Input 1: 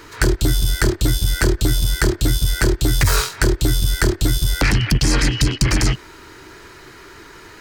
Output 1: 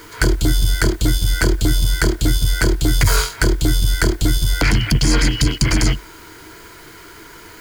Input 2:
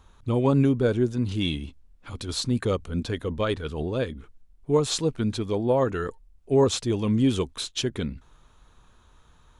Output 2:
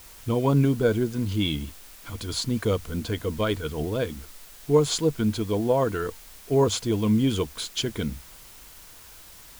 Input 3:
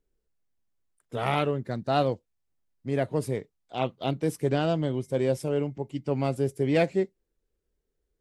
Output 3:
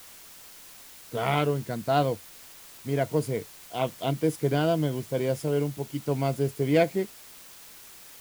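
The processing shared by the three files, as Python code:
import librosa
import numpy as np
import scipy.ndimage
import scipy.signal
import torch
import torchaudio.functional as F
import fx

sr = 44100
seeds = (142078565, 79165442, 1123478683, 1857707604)

y = fx.ripple_eq(x, sr, per_octave=1.8, db=6)
y = fx.quant_dither(y, sr, seeds[0], bits=8, dither='triangular')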